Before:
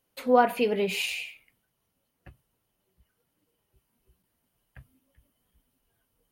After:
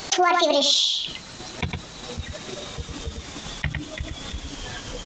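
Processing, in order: gliding tape speed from 146% -> 104%; transient shaper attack +7 dB, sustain -4 dB; resampled via 16 kHz; on a send: delay 106 ms -13.5 dB; on the sum: peak limiter -12.5 dBFS, peak gain reduction 9.5 dB; treble shelf 2.7 kHz +10 dB; level flattener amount 70%

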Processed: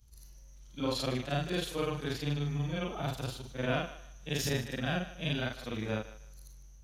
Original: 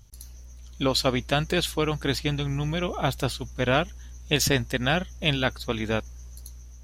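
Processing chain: short-time spectra conjugated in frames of 111 ms; thinning echo 152 ms, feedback 29%, high-pass 420 Hz, level -15.5 dB; harmonic-percussive split percussive -10 dB; trim -2.5 dB

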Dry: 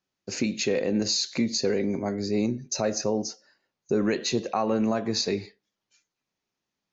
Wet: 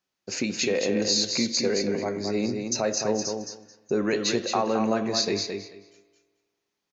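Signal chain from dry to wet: bass shelf 290 Hz -7 dB; feedback delay 218 ms, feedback 17%, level -5.5 dB; spring tank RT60 1.5 s, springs 47 ms, chirp 35 ms, DRR 17 dB; trim +2 dB

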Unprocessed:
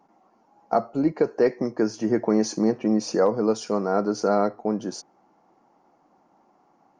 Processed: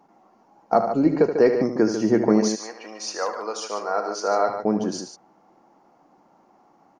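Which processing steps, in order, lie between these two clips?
2.40–4.48 s: high-pass 1.5 kHz -> 570 Hz 12 dB/octave; loudspeakers at several distances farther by 26 m -9 dB, 50 m -9 dB; trim +3 dB

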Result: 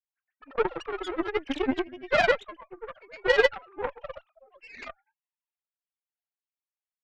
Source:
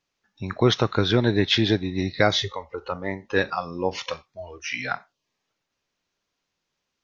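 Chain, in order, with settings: formants replaced by sine waves; granulator 100 ms, grains 20 per s, spray 100 ms, pitch spread up and down by 3 st; Chebyshev shaper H 3 -13 dB, 4 -22 dB, 7 -33 dB, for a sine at -8.5 dBFS

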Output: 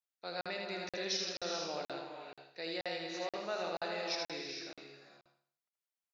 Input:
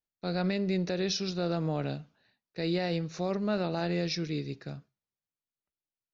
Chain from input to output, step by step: high-pass 600 Hz 12 dB/octave; on a send: feedback delay 79 ms, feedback 37%, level -4 dB; on the sum: gated-style reverb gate 480 ms rising, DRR 4.5 dB; crackling interface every 0.48 s, samples 2048, zero, from 0.41 s; trim -4 dB

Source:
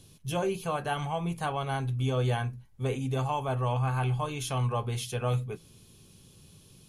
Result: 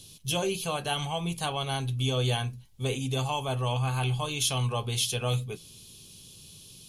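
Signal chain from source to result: resonant high shelf 2.4 kHz +9 dB, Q 1.5

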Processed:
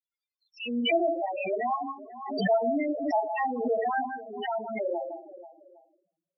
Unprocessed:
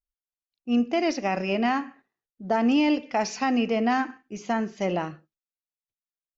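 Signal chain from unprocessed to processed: delay that grows with frequency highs early, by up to 218 ms; high-pass 430 Hz 12 dB/octave; echo whose repeats swap between lows and highs 161 ms, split 1.9 kHz, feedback 61%, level -8 dB; gate with hold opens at -50 dBFS; simulated room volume 83 m³, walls mixed, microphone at 0.55 m; loudest bins only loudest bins 4; resampled via 11.025 kHz; swell ahead of each attack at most 61 dB/s

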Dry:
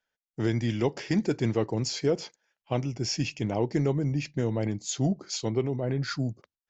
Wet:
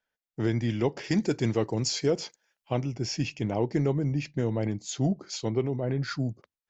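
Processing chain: treble shelf 4.8 kHz -7 dB, from 1.04 s +5.5 dB, from 2.72 s -5.5 dB

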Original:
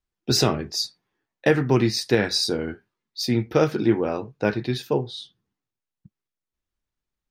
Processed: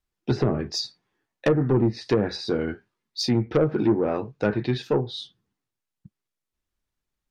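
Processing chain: low-pass that closes with the level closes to 660 Hz, closed at -15 dBFS; saturation -14.5 dBFS, distortion -13 dB; trim +2 dB

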